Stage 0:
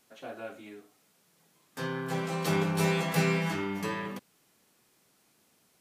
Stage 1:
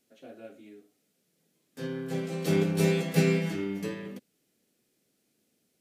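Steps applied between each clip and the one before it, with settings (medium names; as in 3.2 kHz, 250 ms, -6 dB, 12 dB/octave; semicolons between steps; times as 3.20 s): graphic EQ 250/500/1000 Hz +6/+5/-12 dB; upward expansion 1.5:1, over -38 dBFS; trim +1.5 dB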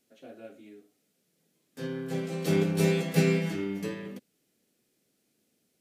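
no audible change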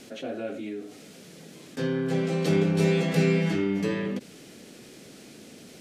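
distance through air 52 m; level flattener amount 50%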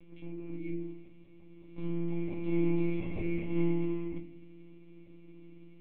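vowel filter u; monotone LPC vocoder at 8 kHz 170 Hz; reverberation RT60 0.60 s, pre-delay 4 ms, DRR 5.5 dB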